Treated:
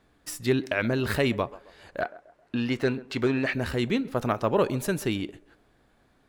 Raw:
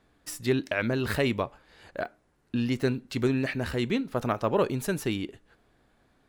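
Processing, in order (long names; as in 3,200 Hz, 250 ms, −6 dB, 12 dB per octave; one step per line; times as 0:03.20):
0:02.01–0:03.53: mid-hump overdrive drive 11 dB, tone 2,200 Hz, clips at −14 dBFS
feedback echo with a band-pass in the loop 133 ms, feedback 42%, band-pass 610 Hz, level −17.5 dB
level +1.5 dB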